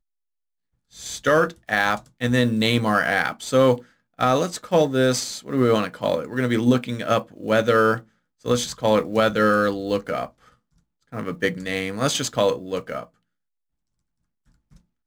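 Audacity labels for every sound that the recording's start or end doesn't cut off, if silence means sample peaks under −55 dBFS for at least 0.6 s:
0.910000	13.140000	sound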